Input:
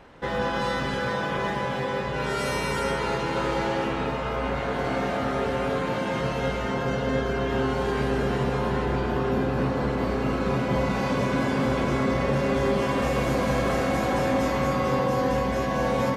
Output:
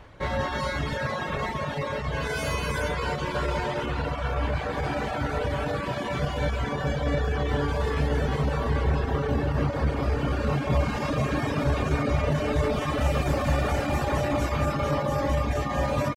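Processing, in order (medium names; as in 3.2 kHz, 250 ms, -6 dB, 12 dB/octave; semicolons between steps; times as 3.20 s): pitch shift +1.5 st; resonant low shelf 140 Hz +8 dB, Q 1.5; reverb removal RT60 0.84 s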